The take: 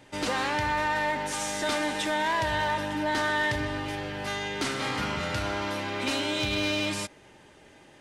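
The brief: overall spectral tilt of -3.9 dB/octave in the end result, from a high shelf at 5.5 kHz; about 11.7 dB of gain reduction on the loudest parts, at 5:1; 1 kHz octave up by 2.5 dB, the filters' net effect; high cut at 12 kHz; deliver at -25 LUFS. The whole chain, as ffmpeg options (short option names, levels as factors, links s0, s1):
-af "lowpass=12000,equalizer=f=1000:t=o:g=3,highshelf=f=5500:g=-5,acompressor=threshold=0.0158:ratio=5,volume=4.22"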